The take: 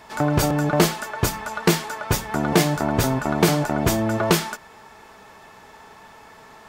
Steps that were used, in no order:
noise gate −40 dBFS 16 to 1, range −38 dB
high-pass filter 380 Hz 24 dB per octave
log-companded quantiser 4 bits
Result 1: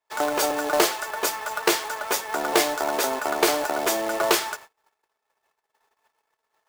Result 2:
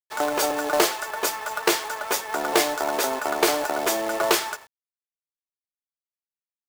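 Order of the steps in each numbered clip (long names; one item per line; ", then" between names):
high-pass filter, then log-companded quantiser, then noise gate
high-pass filter, then noise gate, then log-companded quantiser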